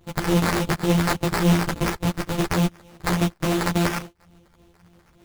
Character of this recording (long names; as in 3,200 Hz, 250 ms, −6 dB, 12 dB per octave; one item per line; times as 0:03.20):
a buzz of ramps at a fixed pitch in blocks of 256 samples
phaser sweep stages 2, 3.5 Hz, lowest notch 420–2,300 Hz
aliases and images of a low sample rate 3,300 Hz, jitter 20%
a shimmering, thickened sound